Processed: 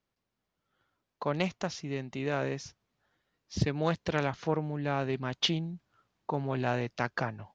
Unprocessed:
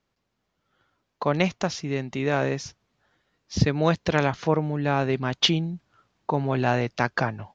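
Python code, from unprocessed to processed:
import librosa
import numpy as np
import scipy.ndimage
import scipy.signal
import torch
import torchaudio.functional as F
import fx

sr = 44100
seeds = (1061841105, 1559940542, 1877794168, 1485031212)

y = fx.doppler_dist(x, sr, depth_ms=0.44)
y = F.gain(torch.from_numpy(y), -7.5).numpy()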